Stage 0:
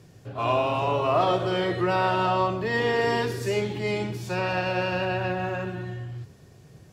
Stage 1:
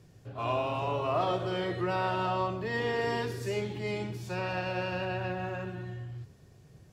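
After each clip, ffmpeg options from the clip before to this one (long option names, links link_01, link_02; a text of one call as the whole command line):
ffmpeg -i in.wav -af "lowshelf=frequency=68:gain=8,volume=-7dB" out.wav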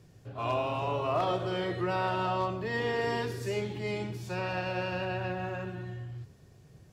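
ffmpeg -i in.wav -af "aeval=exprs='0.1*(abs(mod(val(0)/0.1+3,4)-2)-1)':channel_layout=same" out.wav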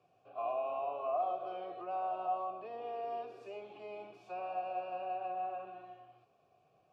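ffmpeg -i in.wav -filter_complex "[0:a]acrossover=split=200|950[link_01][link_02][link_03];[link_01]acompressor=threshold=-53dB:ratio=4[link_04];[link_02]acompressor=threshold=-33dB:ratio=4[link_05];[link_03]acompressor=threshold=-48dB:ratio=4[link_06];[link_04][link_05][link_06]amix=inputs=3:normalize=0,asplit=3[link_07][link_08][link_09];[link_07]bandpass=frequency=730:width_type=q:width=8,volume=0dB[link_10];[link_08]bandpass=frequency=1090:width_type=q:width=8,volume=-6dB[link_11];[link_09]bandpass=frequency=2440:width_type=q:width=8,volume=-9dB[link_12];[link_10][link_11][link_12]amix=inputs=3:normalize=0,volume=5.5dB" out.wav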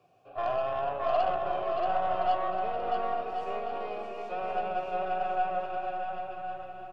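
ffmpeg -i in.wav -filter_complex "[0:a]aeval=exprs='0.0562*(cos(1*acos(clip(val(0)/0.0562,-1,1)))-cos(1*PI/2))+0.00447*(cos(6*acos(clip(val(0)/0.0562,-1,1)))-cos(6*PI/2))':channel_layout=same,asplit=2[link_01][link_02];[link_02]aecho=0:1:630|1071|1380|1596|1747:0.631|0.398|0.251|0.158|0.1[link_03];[link_01][link_03]amix=inputs=2:normalize=0,volume=6dB" out.wav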